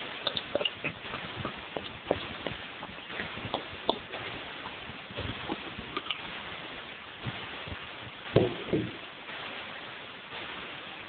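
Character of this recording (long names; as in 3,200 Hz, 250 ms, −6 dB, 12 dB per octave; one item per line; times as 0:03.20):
phaser sweep stages 8, 0.6 Hz, lowest notch 550–2,400 Hz
a quantiser's noise floor 6 bits, dither triangular
tremolo saw down 0.97 Hz, depth 55%
AMR narrowband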